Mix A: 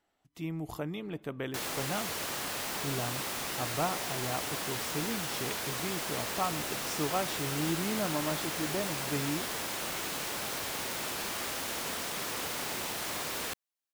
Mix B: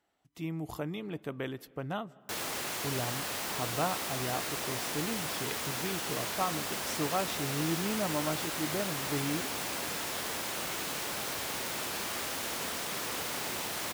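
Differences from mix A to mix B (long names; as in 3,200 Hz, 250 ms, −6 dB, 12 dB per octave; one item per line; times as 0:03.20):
background: entry +0.75 s
master: add high-pass filter 42 Hz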